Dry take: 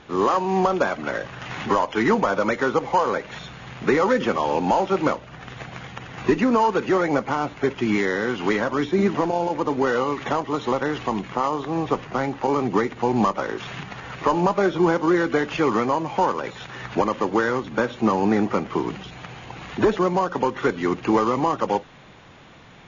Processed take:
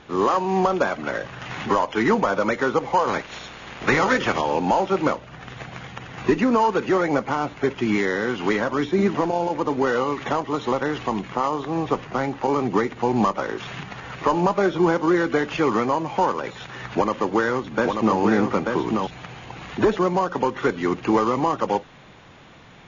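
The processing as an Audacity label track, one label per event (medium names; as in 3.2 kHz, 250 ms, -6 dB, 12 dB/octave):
3.070000	4.400000	spectral peaks clipped ceiling under each frame's peak by 14 dB
16.930000	19.070000	delay 887 ms -4 dB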